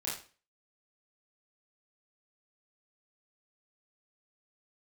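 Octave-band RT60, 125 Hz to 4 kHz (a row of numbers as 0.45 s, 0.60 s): 0.40 s, 0.40 s, 0.40 s, 0.35 s, 0.35 s, 0.35 s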